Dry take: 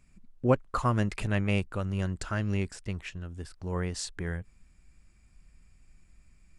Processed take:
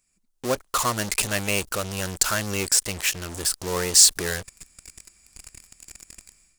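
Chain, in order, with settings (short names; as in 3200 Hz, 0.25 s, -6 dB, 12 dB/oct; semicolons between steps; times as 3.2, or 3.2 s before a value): AGC gain up to 14 dB; in parallel at -6 dB: fuzz box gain 38 dB, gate -37 dBFS; on the sum: tone controls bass -12 dB, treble +15 dB; gain -9 dB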